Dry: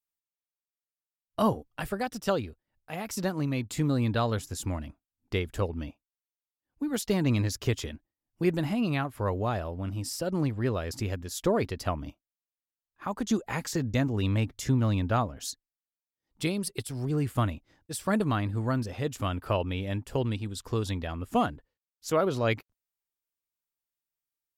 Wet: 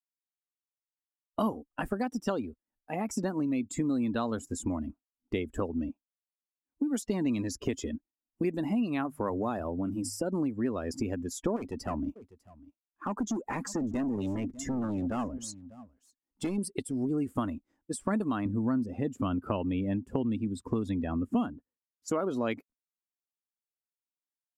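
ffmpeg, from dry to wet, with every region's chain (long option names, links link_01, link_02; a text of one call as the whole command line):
ffmpeg -i in.wav -filter_complex "[0:a]asettb=1/sr,asplit=3[link_01][link_02][link_03];[link_01]atrim=end=8.964[link_04];[link_02]atrim=start=8.96:end=10.39,asetpts=PTS-STARTPTS,afade=type=in:duration=0.004:curve=qsin,afade=type=out:start_time=1.426:duration=0.004:curve=qsin,highshelf=frequency=8600:gain=8,bandreject=frequency=50:width_type=h:width=6,bandreject=frequency=100:width_type=h:width=6,bandreject=frequency=150:width_type=h:width=6[link_05];[link_03]atrim=start=10.386[link_06];[link_04][link_05]acrossfade=duration=0.004:curve1=hsin:curve2=qsin[link_07];[link_07][link_06]acrossfade=duration=0.004:curve1=qsin:curve2=hsin,asettb=1/sr,asplit=3[link_08][link_09][link_10];[link_08]atrim=end=11.564[link_11];[link_09]atrim=start=11.56:end=16.58,asetpts=PTS-STARTPTS,afade=type=in:duration=0.004:curve=qsin,afade=type=out:start_time=5.016:duration=0.004:curve=qsin,asoftclip=type=hard:threshold=-31.5dB,aecho=1:1:598:0.158,atrim=end_sample=221382[link_12];[link_10]atrim=start=16.576[link_13];[link_11][link_12]acrossfade=duration=0.004:curve1=hsin:curve2=qsin[link_14];[link_14][link_13]acrossfade=duration=0.004:curve1=qsin:curve2=hsin,asettb=1/sr,asplit=3[link_15][link_16][link_17];[link_15]atrim=end=18.454[link_18];[link_16]atrim=start=18.45:end=22.08,asetpts=PTS-STARTPTS,afade=type=in:duration=0.004:curve=qsin,afade=type=out:start_time=3.626:duration=0.004:curve=qsin,highpass=93,bass=frequency=250:gain=9,treble=frequency=4000:gain=-6[link_19];[link_17]atrim=start=22.076[link_20];[link_18][link_19]acrossfade=duration=0.004:curve1=hsin:curve2=qsin[link_21];[link_21][link_20]acrossfade=duration=0.004:curve1=qsin:curve2=hsin,afftdn=noise_reduction=16:noise_floor=-40,equalizer=frequency=125:width_type=o:width=1:gain=-10,equalizer=frequency=250:width_type=o:width=1:gain=12,equalizer=frequency=1000:width_type=o:width=1:gain=4,equalizer=frequency=4000:width_type=o:width=1:gain=-7,equalizer=frequency=8000:width_type=o:width=1:gain=6,acrossover=split=3200|7900[link_22][link_23][link_24];[link_22]acompressor=threshold=-30dB:ratio=4[link_25];[link_23]acompressor=threshold=-44dB:ratio=4[link_26];[link_24]acompressor=threshold=-49dB:ratio=4[link_27];[link_25][link_26][link_27]amix=inputs=3:normalize=0,volume=1.5dB" out.wav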